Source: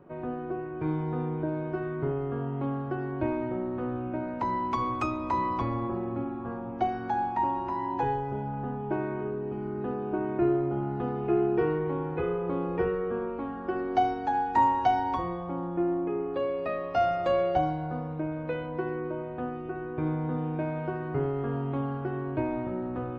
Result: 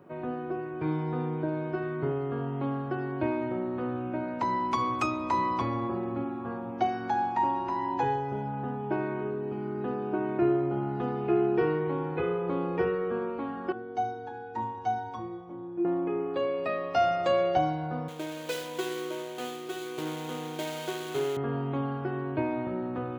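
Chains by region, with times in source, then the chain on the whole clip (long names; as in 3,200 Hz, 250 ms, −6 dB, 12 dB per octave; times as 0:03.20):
0:13.72–0:15.85: tilt shelving filter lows +5 dB, about 630 Hz + stiff-string resonator 110 Hz, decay 0.24 s, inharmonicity 0.008
0:18.08–0:21.37: running median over 25 samples + spectral tilt +4 dB per octave + hollow resonant body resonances 400/3,200 Hz, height 7 dB, ringing for 25 ms
whole clip: high-pass filter 100 Hz 12 dB per octave; high-shelf EQ 3,000 Hz +9.5 dB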